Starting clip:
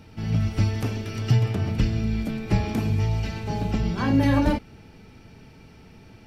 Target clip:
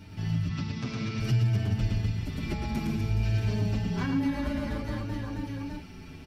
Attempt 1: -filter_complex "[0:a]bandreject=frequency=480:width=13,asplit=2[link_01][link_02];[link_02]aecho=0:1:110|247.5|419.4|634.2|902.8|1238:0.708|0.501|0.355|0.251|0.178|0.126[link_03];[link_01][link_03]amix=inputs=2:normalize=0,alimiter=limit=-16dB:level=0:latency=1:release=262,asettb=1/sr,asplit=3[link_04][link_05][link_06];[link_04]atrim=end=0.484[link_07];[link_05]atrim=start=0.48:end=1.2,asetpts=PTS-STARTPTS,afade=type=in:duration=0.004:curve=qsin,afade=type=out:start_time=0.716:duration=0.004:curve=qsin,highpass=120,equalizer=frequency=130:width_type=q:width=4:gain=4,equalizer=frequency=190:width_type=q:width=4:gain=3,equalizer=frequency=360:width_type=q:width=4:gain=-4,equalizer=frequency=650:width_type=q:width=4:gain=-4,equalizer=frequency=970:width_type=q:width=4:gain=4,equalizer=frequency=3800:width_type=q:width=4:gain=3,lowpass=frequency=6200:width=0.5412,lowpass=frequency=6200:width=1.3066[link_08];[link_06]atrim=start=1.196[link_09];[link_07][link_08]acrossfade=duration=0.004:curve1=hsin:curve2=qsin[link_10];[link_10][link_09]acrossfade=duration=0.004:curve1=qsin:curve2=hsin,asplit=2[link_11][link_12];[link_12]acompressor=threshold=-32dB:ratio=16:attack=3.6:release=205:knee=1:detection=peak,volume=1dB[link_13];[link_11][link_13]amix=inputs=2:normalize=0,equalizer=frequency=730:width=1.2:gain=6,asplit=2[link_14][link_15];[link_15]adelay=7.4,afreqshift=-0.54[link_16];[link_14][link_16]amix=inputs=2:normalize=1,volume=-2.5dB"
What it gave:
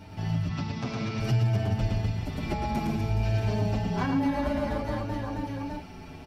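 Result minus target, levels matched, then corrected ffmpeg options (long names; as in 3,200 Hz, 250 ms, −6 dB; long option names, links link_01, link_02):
1,000 Hz band +7.0 dB
-filter_complex "[0:a]bandreject=frequency=480:width=13,asplit=2[link_01][link_02];[link_02]aecho=0:1:110|247.5|419.4|634.2|902.8|1238:0.708|0.501|0.355|0.251|0.178|0.126[link_03];[link_01][link_03]amix=inputs=2:normalize=0,alimiter=limit=-16dB:level=0:latency=1:release=262,asettb=1/sr,asplit=3[link_04][link_05][link_06];[link_04]atrim=end=0.484[link_07];[link_05]atrim=start=0.48:end=1.2,asetpts=PTS-STARTPTS,afade=type=in:duration=0.004:curve=qsin,afade=type=out:start_time=0.716:duration=0.004:curve=qsin,highpass=120,equalizer=frequency=130:width_type=q:width=4:gain=4,equalizer=frequency=190:width_type=q:width=4:gain=3,equalizer=frequency=360:width_type=q:width=4:gain=-4,equalizer=frequency=650:width_type=q:width=4:gain=-4,equalizer=frequency=970:width_type=q:width=4:gain=4,equalizer=frequency=3800:width_type=q:width=4:gain=3,lowpass=frequency=6200:width=0.5412,lowpass=frequency=6200:width=1.3066[link_08];[link_06]atrim=start=1.196[link_09];[link_07][link_08]acrossfade=duration=0.004:curve1=hsin:curve2=qsin[link_10];[link_10][link_09]acrossfade=duration=0.004:curve1=qsin:curve2=hsin,asplit=2[link_11][link_12];[link_12]acompressor=threshold=-32dB:ratio=16:attack=3.6:release=205:knee=1:detection=peak,volume=1dB[link_13];[link_11][link_13]amix=inputs=2:normalize=0,equalizer=frequency=730:width=1.2:gain=-4.5,asplit=2[link_14][link_15];[link_15]adelay=7.4,afreqshift=-0.54[link_16];[link_14][link_16]amix=inputs=2:normalize=1,volume=-2.5dB"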